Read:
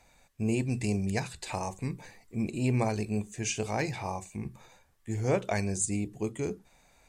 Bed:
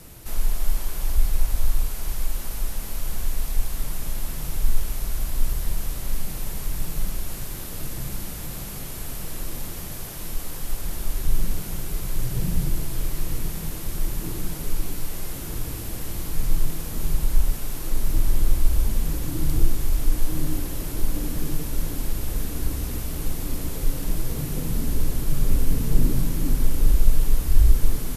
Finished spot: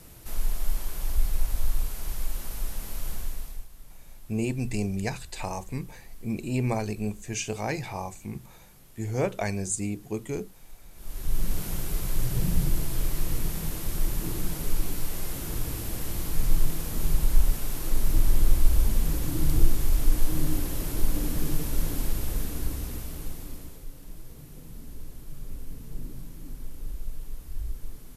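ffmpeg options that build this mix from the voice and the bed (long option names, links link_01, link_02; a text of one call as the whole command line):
ffmpeg -i stem1.wav -i stem2.wav -filter_complex "[0:a]adelay=3900,volume=0.5dB[link_01];[1:a]volume=15dB,afade=type=out:start_time=3.09:duration=0.58:silence=0.158489,afade=type=in:start_time=10.94:duration=0.69:silence=0.105925,afade=type=out:start_time=21.99:duration=1.87:silence=0.141254[link_02];[link_01][link_02]amix=inputs=2:normalize=0" out.wav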